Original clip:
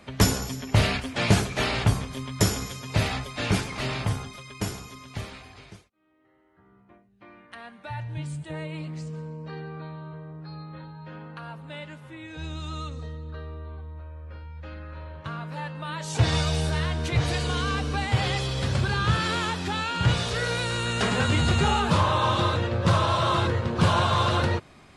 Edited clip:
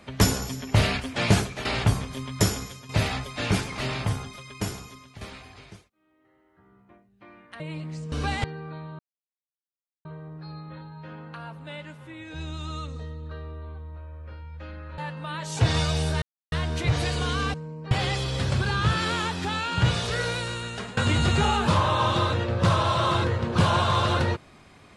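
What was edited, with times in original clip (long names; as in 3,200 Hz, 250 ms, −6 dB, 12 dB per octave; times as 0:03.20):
0:01.39–0:01.65: fade out, to −12 dB
0:02.44–0:02.89: fade out, to −9 dB
0:04.67–0:05.21: fade out equal-power, to −13 dB
0:07.60–0:08.64: remove
0:09.16–0:09.53: swap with 0:17.82–0:18.14
0:10.08: splice in silence 1.06 s
0:15.01–0:15.56: remove
0:16.80: splice in silence 0.30 s
0:20.44–0:21.20: fade out, to −17.5 dB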